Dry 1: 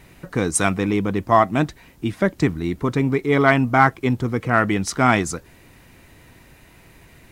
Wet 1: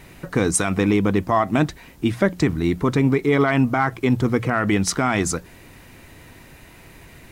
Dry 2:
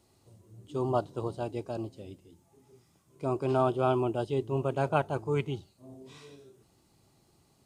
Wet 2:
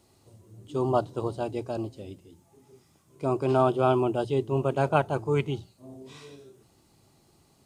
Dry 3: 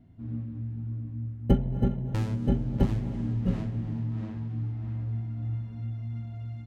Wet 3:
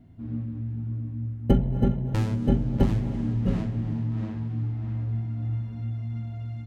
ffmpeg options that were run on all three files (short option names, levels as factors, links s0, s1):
-af "bandreject=f=60:t=h:w=6,bandreject=f=120:t=h:w=6,bandreject=f=180:t=h:w=6,alimiter=limit=0.251:level=0:latency=1:release=61,volume=1.58"